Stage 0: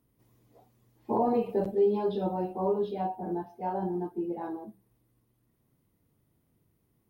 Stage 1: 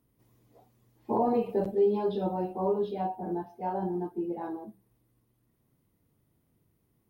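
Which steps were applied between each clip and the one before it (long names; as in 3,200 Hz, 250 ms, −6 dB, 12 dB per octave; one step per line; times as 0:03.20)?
no processing that can be heard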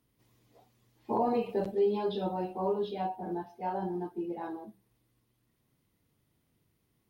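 parametric band 3,600 Hz +9 dB 2.7 octaves
level −3.5 dB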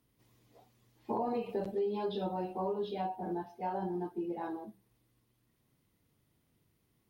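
downward compressor 3 to 1, threshold −32 dBFS, peak gain reduction 7 dB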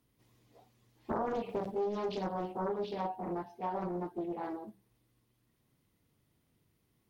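highs frequency-modulated by the lows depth 0.6 ms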